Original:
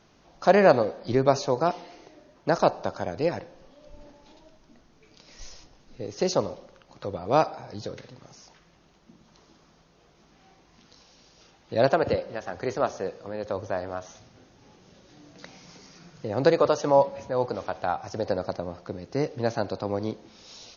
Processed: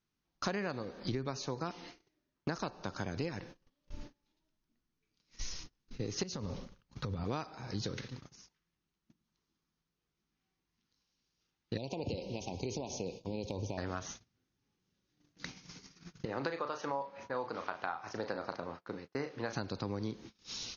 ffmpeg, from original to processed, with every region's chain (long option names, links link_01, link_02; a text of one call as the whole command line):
ffmpeg -i in.wav -filter_complex "[0:a]asettb=1/sr,asplit=3[link_01][link_02][link_03];[link_01]atrim=end=6.234[link_04];[link_02]atrim=start=6.23:end=7.24,asetpts=PTS-STARTPTS,afade=type=in:duration=0.004:curve=qsin,afade=type=out:start_time=1.006:duration=0.004:curve=qsin,lowshelf=frequency=200:gain=9.5,bandreject=frequency=340:width=5.2,acompressor=threshold=-32dB:ratio=10:attack=3.2:release=140:knee=1:detection=peak[link_05];[link_03]atrim=start=7.236[link_06];[link_04][link_05]acrossfade=duration=0.004:curve1=hsin:curve2=qsin[link_07];[link_07][link_06]acrossfade=duration=0.004:curve1=qsin:curve2=hsin,asettb=1/sr,asplit=3[link_08][link_09][link_10];[link_08]atrim=end=11.774[link_11];[link_09]atrim=start=11.77:end=13.78,asetpts=PTS-STARTPTS,afade=type=in:duration=0.004:curve=qsin,afade=type=out:start_time=2.006:duration=0.004:curve=qsin,acompressor=threshold=-29dB:ratio=5:attack=3.2:release=140:knee=1:detection=peak,asuperstop=centerf=1500:order=12:qfactor=1.1[link_12];[link_10]atrim=start=13.776[link_13];[link_11][link_12]acrossfade=duration=0.004:curve1=hsin:curve2=qsin[link_14];[link_14][link_13]acrossfade=duration=0.004:curve1=qsin:curve2=hsin,asettb=1/sr,asplit=3[link_15][link_16][link_17];[link_15]atrim=end=16.254[link_18];[link_16]atrim=start=16.25:end=19.53,asetpts=PTS-STARTPTS,afade=type=in:duration=0.004:curve=qsin,afade=type=out:start_time=3.276:duration=0.004:curve=qsin,bandpass=frequency=1100:width_type=q:width=0.67,asplit=2[link_19][link_20];[link_20]adelay=36,volume=-8.5dB[link_21];[link_19][link_21]amix=inputs=2:normalize=0,atrim=end_sample=144648[link_22];[link_17]atrim=start=19.526[link_23];[link_18][link_22]acrossfade=duration=0.004:curve1=hsin:curve2=qsin[link_24];[link_24][link_23]acrossfade=duration=0.004:curve1=qsin:curve2=hsin,equalizer=frequency=630:width_type=o:width=1.1:gain=-13,agate=range=-29dB:threshold=-49dB:ratio=16:detection=peak,acompressor=threshold=-37dB:ratio=16,volume=4.5dB" out.wav